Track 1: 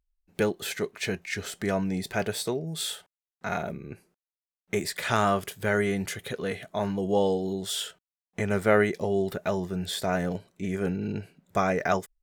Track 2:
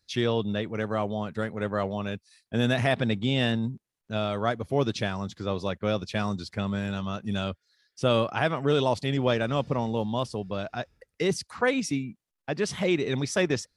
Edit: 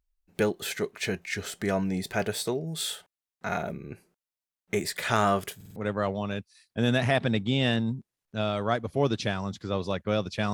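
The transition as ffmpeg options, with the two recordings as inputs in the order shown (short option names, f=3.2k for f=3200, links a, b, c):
-filter_complex "[0:a]apad=whole_dur=10.53,atrim=end=10.53,asplit=4[a][b][c][d];[a]atrim=end=5.612[e];[b]atrim=start=5.558:end=5.612[f];[c]atrim=start=5.558:end=5.612[g];[d]atrim=start=5.558:end=5.612[h];[1:a]atrim=start=1.518:end=6.29[i];[e][f]acrossfade=d=0.004:c1=hsin:c2=hsin[j];[j][g]acrossfade=d=0.004:c1=hsin:c2=hsin[k];[k][h]acrossfade=d=0.004:c1=hsin:c2=hsin[l];[l][i]acrossfade=d=0.004:c1=hsin:c2=hsin"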